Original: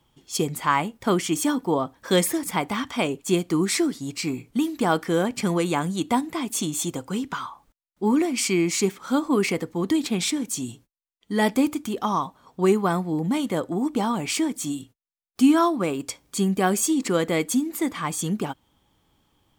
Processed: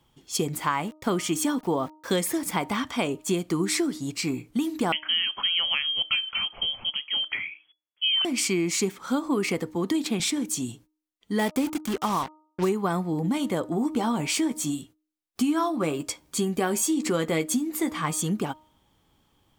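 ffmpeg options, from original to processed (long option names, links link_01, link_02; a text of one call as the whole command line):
ffmpeg -i in.wav -filter_complex "[0:a]asettb=1/sr,asplit=3[link_01][link_02][link_03];[link_01]atrim=end=0.534[link_04];[link_02]atrim=start=0.53:end=2.64,asetpts=PTS-STARTPTS,afade=type=in:duration=0.004:curve=qsin,afade=type=out:start_time=2.106:duration=0.004:curve=qsin,aeval=exprs='val(0)*gte(abs(val(0)),0.00708)':channel_layout=same[link_05];[link_03]atrim=start=2.636[link_06];[link_04][link_05]acrossfade=duration=0.004:curve1=hsin:curve2=qsin[link_07];[link_07][link_06]acrossfade=duration=0.004:curve1=qsin:curve2=hsin,asettb=1/sr,asplit=3[link_08][link_09][link_10];[link_08]atrim=end=4.924[link_11];[link_09]atrim=start=4.92:end=8.25,asetpts=PTS-STARTPTS,afade=type=in:duration=0.004:curve=qsin,afade=type=out:start_time=3.326:duration=0.004:curve=qsin,lowpass=frequency=2900:width_type=q:width=0.5098,lowpass=frequency=2900:width_type=q:width=0.6013,lowpass=frequency=2900:width_type=q:width=0.9,lowpass=frequency=2900:width_type=q:width=2.563,afreqshift=-3400[link_12];[link_10]atrim=start=8.246[link_13];[link_11][link_12]acrossfade=duration=0.004:curve1=hsin:curve2=qsin[link_14];[link_14][link_13]acrossfade=duration=0.004:curve1=qsin:curve2=hsin,asettb=1/sr,asplit=3[link_15][link_16][link_17];[link_15]atrim=end=9.754[link_18];[link_16]atrim=start=9.75:end=10.2,asetpts=PTS-STARTPTS,afade=type=in:duration=0.004:curve=qsin,afade=type=out:start_time=0.446:duration=0.004:curve=qsin,highpass=150[link_19];[link_17]atrim=start=10.196[link_20];[link_18][link_19]acrossfade=duration=0.004:curve1=hsin:curve2=qsin[link_21];[link_21][link_20]acrossfade=duration=0.004:curve1=qsin:curve2=hsin,asettb=1/sr,asplit=3[link_22][link_23][link_24];[link_22]atrim=end=11.394[link_25];[link_23]atrim=start=11.39:end=12.69,asetpts=PTS-STARTPTS,afade=type=in:duration=0.004:curve=qsin,afade=type=out:start_time=1.296:duration=0.004:curve=qsin,acrusher=bits=4:mix=0:aa=0.5[link_26];[link_24]atrim=start=12.686[link_27];[link_25][link_26]acrossfade=duration=0.004:curve1=hsin:curve2=qsin[link_28];[link_28][link_27]acrossfade=duration=0.004:curve1=qsin:curve2=hsin,asettb=1/sr,asplit=3[link_29][link_30][link_31];[link_29]atrim=end=13.694[link_32];[link_30]atrim=start=13.69:end=18.22,asetpts=PTS-STARTPTS,afade=type=in:duration=0.004:curve=qsin,afade=type=out:start_time=4.526:duration=0.004:curve=qsin,asplit=2[link_33][link_34];[link_34]adelay=13,volume=-8dB[link_35];[link_33][link_35]amix=inputs=2:normalize=0,atrim=end_sample=199773[link_36];[link_31]atrim=start=18.216[link_37];[link_32][link_36]acrossfade=duration=0.004:curve1=hsin:curve2=qsin[link_38];[link_38][link_37]acrossfade=duration=0.004:curve1=qsin:curve2=hsin,bandreject=frequency=309.3:width_type=h:width=4,bandreject=frequency=618.6:width_type=h:width=4,bandreject=frequency=927.9:width_type=h:width=4,bandreject=frequency=1237.2:width_type=h:width=4,acompressor=threshold=-21dB:ratio=6" out.wav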